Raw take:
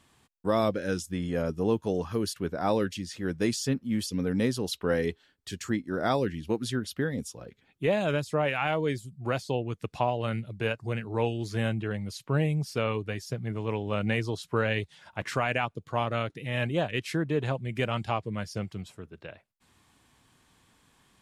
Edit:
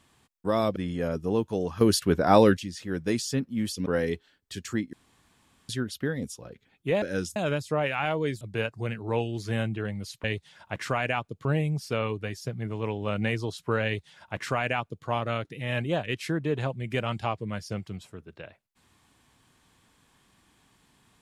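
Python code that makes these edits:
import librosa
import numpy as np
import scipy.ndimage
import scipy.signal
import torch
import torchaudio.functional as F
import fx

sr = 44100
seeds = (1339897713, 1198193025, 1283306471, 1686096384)

y = fx.edit(x, sr, fx.move(start_s=0.76, length_s=0.34, to_s=7.98),
    fx.clip_gain(start_s=2.15, length_s=0.76, db=8.5),
    fx.cut(start_s=4.2, length_s=0.62),
    fx.room_tone_fill(start_s=5.89, length_s=0.76),
    fx.cut(start_s=9.03, length_s=1.44),
    fx.duplicate(start_s=14.7, length_s=1.21, to_s=12.3), tone=tone)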